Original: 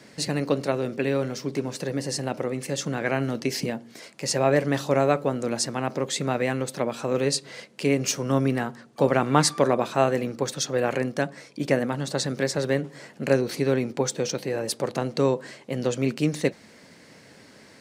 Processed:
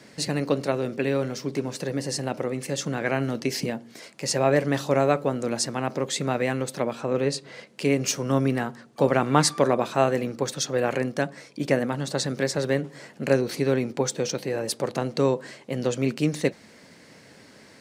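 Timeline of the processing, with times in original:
0:06.93–0:07.67: high-shelf EQ 4,000 Hz −9 dB

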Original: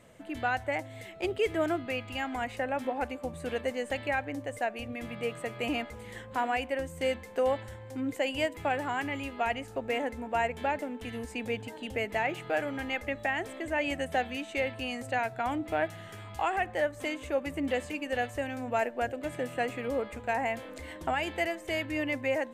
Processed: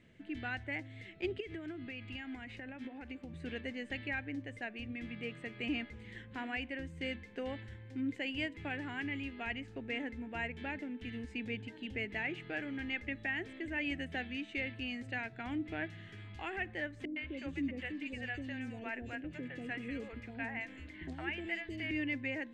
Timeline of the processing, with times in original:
0:01.40–0:03.35: downward compressor, threshold −34 dBFS
0:17.05–0:21.91: three-band delay without the direct sound lows, mids, highs 110/320 ms, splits 540/3,600 Hz
whole clip: low-pass filter 3,400 Hz 12 dB per octave; flat-topped bell 800 Hz −13 dB; mains-hum notches 60/120 Hz; level −3 dB

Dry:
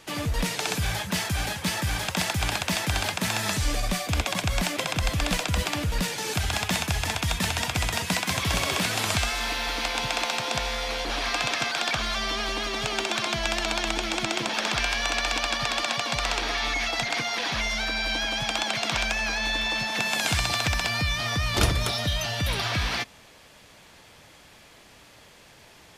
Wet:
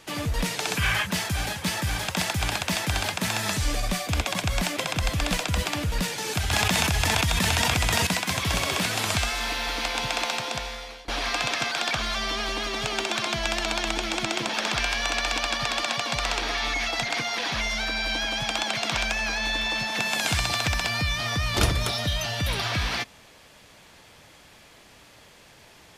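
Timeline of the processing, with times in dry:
0:00.77–0:01.06: gain on a spectral selection 960–3,300 Hz +9 dB
0:06.51–0:08.07: envelope flattener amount 100%
0:10.31–0:11.08: fade out, to −21 dB

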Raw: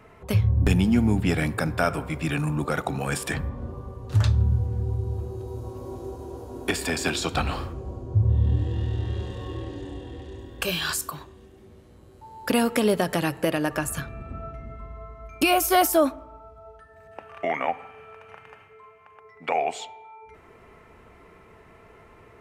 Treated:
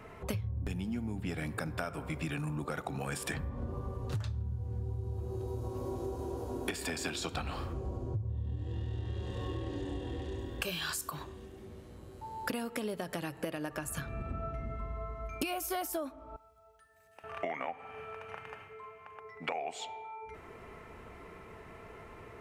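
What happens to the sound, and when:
0:16.36–0:17.24: first-order pre-emphasis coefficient 0.9
whole clip: downward compressor 12 to 1, threshold −34 dBFS; level +1 dB

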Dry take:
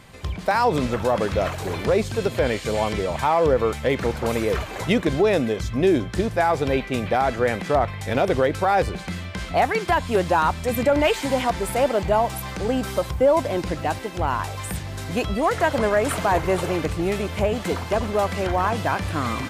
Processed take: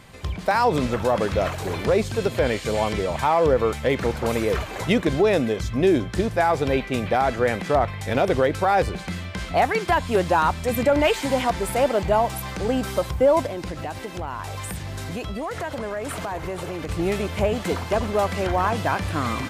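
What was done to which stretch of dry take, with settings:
0:13.46–0:16.89: downward compressor 4 to 1, threshold −27 dBFS

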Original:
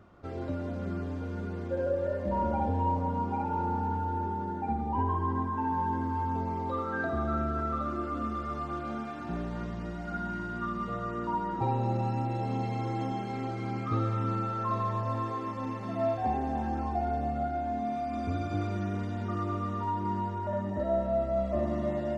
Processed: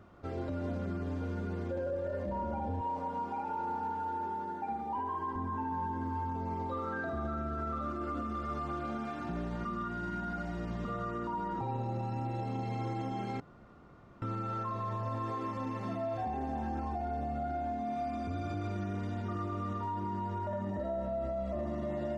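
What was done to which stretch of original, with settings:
0:02.81–0:05.36: high-pass filter 630 Hz 6 dB per octave
0:09.65–0:10.85: reverse
0:13.40–0:14.22: fill with room tone
whole clip: brickwall limiter −28.5 dBFS

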